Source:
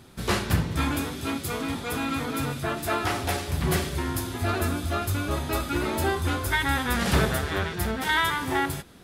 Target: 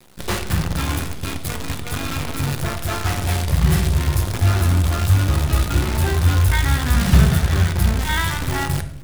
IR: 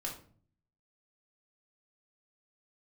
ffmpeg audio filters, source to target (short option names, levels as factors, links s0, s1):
-filter_complex "[0:a]asubboost=boost=6:cutoff=160,acrusher=bits=5:dc=4:mix=0:aa=0.000001,asplit=2[s0][s1];[1:a]atrim=start_sample=2205,asetrate=24696,aresample=44100[s2];[s1][s2]afir=irnorm=-1:irlink=0,volume=0.335[s3];[s0][s3]amix=inputs=2:normalize=0,volume=0.794"